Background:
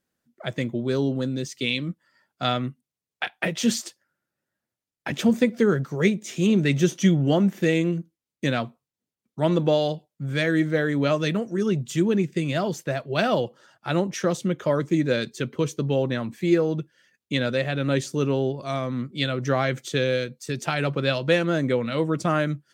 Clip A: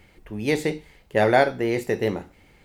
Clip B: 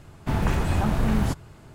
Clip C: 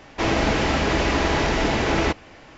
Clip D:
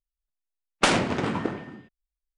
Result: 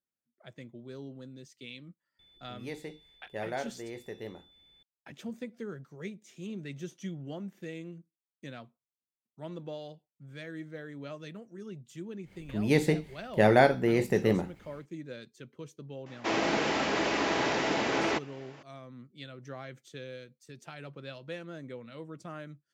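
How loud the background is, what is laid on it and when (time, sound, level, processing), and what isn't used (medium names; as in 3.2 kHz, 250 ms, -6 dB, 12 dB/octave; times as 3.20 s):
background -20 dB
2.19 s: add A -18 dB + whistle 3.5 kHz -42 dBFS
12.23 s: add A -4 dB, fades 0.10 s + peaking EQ 170 Hz +7.5 dB 1.2 oct
16.06 s: add C -6.5 dB + high-pass 220 Hz
not used: B, D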